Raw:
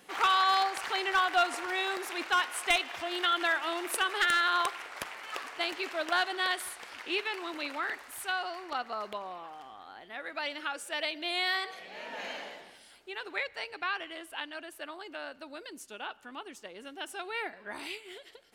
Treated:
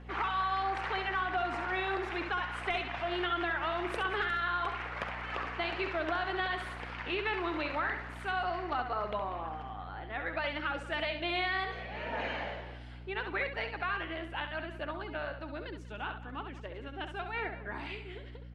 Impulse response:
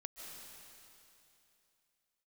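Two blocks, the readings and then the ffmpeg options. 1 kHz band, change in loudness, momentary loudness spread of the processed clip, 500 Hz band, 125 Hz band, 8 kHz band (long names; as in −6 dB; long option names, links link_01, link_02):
−2.5 dB, −3.0 dB, 10 LU, +1.0 dB, can't be measured, below −20 dB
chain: -filter_complex "[0:a]lowpass=2400,dynaudnorm=framelen=610:gausssize=13:maxgain=3dB,alimiter=limit=-23dB:level=0:latency=1:release=22,acompressor=threshold=-31dB:ratio=6,aeval=exprs='val(0)+0.00316*(sin(2*PI*60*n/s)+sin(2*PI*2*60*n/s)/2+sin(2*PI*3*60*n/s)/3+sin(2*PI*4*60*n/s)/4+sin(2*PI*5*60*n/s)/5)':channel_layout=same,flanger=delay=0.1:depth=2.8:regen=-58:speed=0.74:shape=triangular,asplit=2[link_01][link_02];[link_02]aecho=0:1:67|192:0.398|0.141[link_03];[link_01][link_03]amix=inputs=2:normalize=0,volume=5.5dB"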